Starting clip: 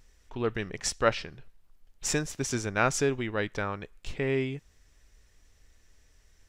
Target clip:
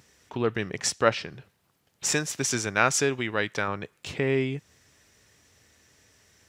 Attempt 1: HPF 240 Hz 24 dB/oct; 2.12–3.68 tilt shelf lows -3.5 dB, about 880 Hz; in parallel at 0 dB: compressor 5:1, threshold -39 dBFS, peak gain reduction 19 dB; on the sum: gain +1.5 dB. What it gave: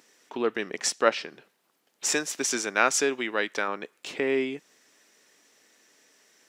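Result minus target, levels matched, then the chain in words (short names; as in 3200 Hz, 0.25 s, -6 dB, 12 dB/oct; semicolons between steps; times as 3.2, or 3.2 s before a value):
125 Hz band -18.0 dB
HPF 95 Hz 24 dB/oct; 2.12–3.68 tilt shelf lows -3.5 dB, about 880 Hz; in parallel at 0 dB: compressor 5:1, threshold -39 dBFS, peak gain reduction 19 dB; on the sum: gain +1.5 dB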